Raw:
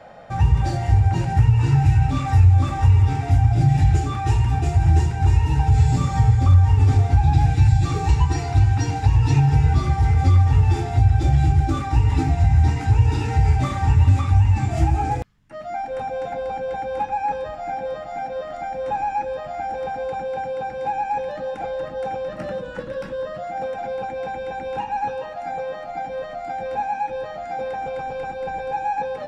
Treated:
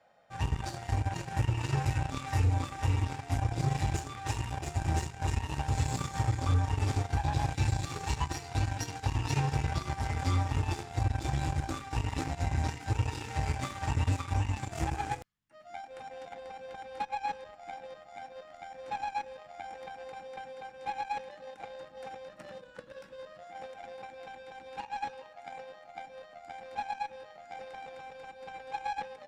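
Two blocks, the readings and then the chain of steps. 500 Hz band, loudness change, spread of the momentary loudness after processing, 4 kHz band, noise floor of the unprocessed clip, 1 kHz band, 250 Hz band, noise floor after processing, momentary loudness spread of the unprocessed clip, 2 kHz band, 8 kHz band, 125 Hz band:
-15.0 dB, -13.0 dB, 16 LU, -4.5 dB, -33 dBFS, -11.5 dB, -12.0 dB, -53 dBFS, 13 LU, -7.5 dB, no reading, -15.5 dB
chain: tilt EQ +2 dB/octave; Chebyshev shaper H 7 -19 dB, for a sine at -10 dBFS; trim -7.5 dB

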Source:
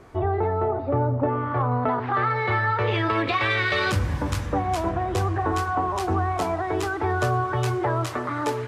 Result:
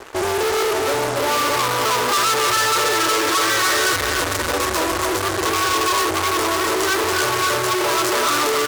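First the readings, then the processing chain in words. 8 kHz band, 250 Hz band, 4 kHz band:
+21.0 dB, +2.0 dB, +15.0 dB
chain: in parallel at +3 dB: gain riding; on the sum: treble shelf 5.8 kHz -10.5 dB; on a send: feedback delay 279 ms, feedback 47%, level -4 dB; on the sum: peak limiter -9 dBFS, peak gain reduction 7 dB; static phaser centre 740 Hz, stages 6; fuzz box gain 32 dB, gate -41 dBFS; tone controls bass -13 dB, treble +9 dB; trim -4 dB

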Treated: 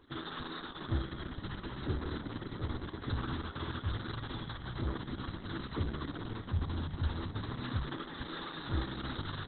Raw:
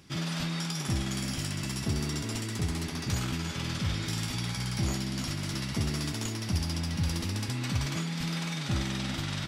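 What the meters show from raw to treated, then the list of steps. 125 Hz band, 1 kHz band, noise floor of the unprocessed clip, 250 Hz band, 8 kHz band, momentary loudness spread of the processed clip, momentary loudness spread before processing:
-7.0 dB, -2.0 dB, -36 dBFS, -7.0 dB, under -40 dB, 5 LU, 2 LU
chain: tracing distortion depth 0.05 ms; static phaser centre 660 Hz, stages 6; trim +1 dB; Opus 6 kbps 48 kHz

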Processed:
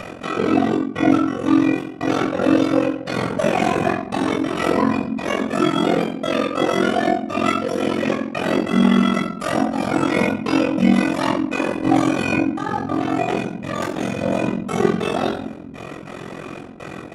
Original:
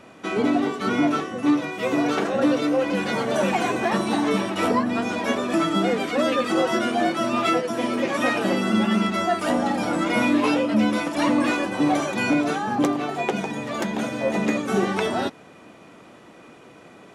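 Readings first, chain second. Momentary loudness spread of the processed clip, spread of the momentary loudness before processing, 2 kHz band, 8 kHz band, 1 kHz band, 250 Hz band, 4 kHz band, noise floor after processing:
9 LU, 5 LU, +1.0 dB, -0.5 dB, +1.5 dB, +3.5 dB, +0.5 dB, -35 dBFS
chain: trance gate "x.xxxxx..x" 142 bpm -60 dB; simulated room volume 970 m³, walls furnished, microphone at 6.2 m; ring modulator 22 Hz; upward compressor, threshold -20 dBFS; trim -1.5 dB

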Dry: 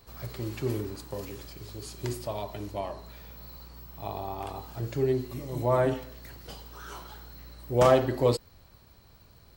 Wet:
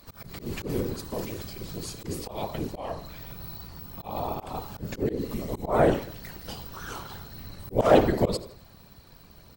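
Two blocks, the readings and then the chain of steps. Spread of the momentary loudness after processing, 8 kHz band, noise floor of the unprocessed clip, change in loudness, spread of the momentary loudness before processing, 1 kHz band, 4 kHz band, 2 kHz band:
18 LU, +2.5 dB, -57 dBFS, +0.5 dB, 21 LU, +2.0 dB, +2.5 dB, +3.0 dB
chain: feedback delay 82 ms, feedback 41%, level -21 dB; whisper effect; slow attack 152 ms; trim +5 dB

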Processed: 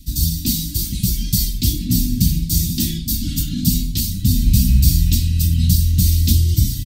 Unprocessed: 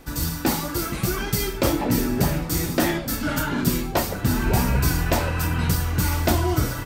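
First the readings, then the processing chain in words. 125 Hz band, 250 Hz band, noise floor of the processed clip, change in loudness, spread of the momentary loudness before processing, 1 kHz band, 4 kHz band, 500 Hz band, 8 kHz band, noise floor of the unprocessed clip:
+7.5 dB, +2.0 dB, -27 dBFS, +5.5 dB, 4 LU, under -35 dB, +6.5 dB, under -15 dB, +6.5 dB, -31 dBFS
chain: Chebyshev band-stop 150–3700 Hz, order 3; peaking EQ 260 Hz +11 dB 2.8 oct; comb 3.6 ms, depth 71%; trim +5.5 dB

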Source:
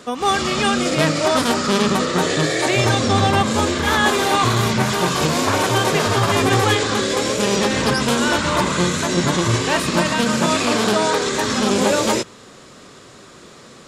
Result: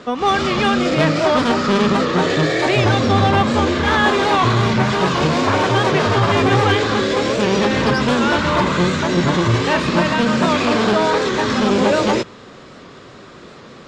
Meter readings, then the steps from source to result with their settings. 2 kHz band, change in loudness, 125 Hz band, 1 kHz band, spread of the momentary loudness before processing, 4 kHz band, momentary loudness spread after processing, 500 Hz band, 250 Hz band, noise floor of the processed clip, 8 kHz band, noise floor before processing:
+1.5 dB, +1.5 dB, +2.5 dB, +2.0 dB, 3 LU, -1.5 dB, 3 LU, +2.5 dB, +2.5 dB, -40 dBFS, -9.0 dB, -43 dBFS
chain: distance through air 150 m; in parallel at -3.5 dB: saturation -19.5 dBFS, distortion -10 dB; on the sum: warped record 78 rpm, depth 100 cents

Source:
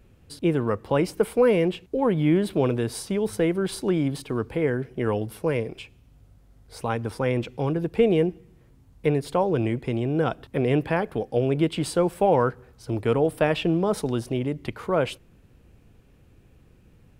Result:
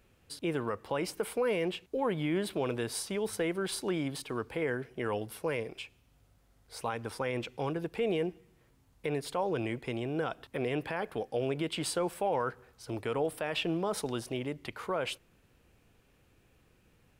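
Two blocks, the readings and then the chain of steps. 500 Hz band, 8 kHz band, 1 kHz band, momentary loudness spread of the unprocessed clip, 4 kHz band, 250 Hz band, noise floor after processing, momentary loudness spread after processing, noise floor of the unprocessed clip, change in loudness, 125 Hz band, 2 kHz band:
-9.5 dB, -1.5 dB, -7.5 dB, 8 LU, -2.5 dB, -11.0 dB, -67 dBFS, 6 LU, -56 dBFS, -9.5 dB, -13.0 dB, -5.0 dB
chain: bass shelf 440 Hz -11.5 dB; peak limiter -20 dBFS, peak gain reduction 9.5 dB; trim -1.5 dB

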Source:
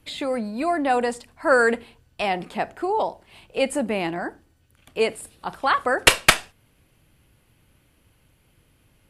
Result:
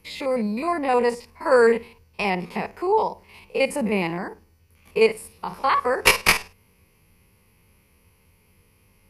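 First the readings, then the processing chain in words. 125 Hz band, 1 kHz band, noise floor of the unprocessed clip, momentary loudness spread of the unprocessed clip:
+3.0 dB, 0.0 dB, -62 dBFS, 14 LU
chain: spectrogram pixelated in time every 50 ms; rippled EQ curve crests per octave 0.84, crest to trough 10 dB; trim +1.5 dB

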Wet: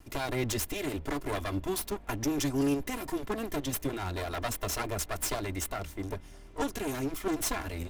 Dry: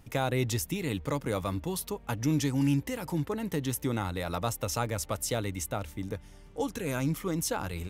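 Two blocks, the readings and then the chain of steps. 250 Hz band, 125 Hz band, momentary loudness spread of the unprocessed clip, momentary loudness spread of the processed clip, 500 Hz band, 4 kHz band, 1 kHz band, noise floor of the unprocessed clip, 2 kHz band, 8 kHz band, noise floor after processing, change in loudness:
-1.5 dB, -6.5 dB, 7 LU, 6 LU, -1.0 dB, +0.5 dB, -1.0 dB, -52 dBFS, +0.5 dB, 0.0 dB, -49 dBFS, -1.5 dB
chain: comb filter that takes the minimum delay 2.9 ms; trim +2.5 dB

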